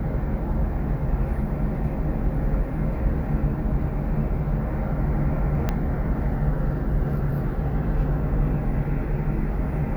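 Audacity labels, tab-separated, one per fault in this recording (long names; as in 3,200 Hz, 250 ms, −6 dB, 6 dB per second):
5.690000	5.690000	click −11 dBFS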